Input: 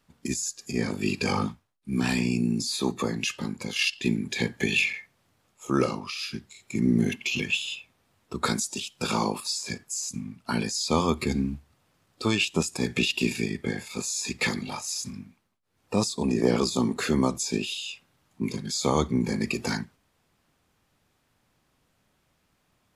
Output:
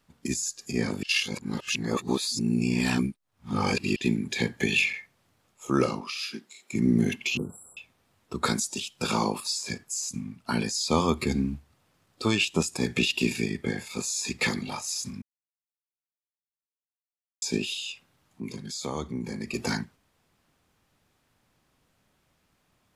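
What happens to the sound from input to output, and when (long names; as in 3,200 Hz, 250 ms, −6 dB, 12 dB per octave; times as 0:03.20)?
0:01.03–0:03.96: reverse
0:06.01–0:06.73: high-pass filter 220 Hz 24 dB per octave
0:07.37–0:07.77: linear-phase brick-wall band-stop 1,500–7,400 Hz
0:15.22–0:17.42: silence
0:17.92–0:19.54: downward compressor 1.5 to 1, threshold −43 dBFS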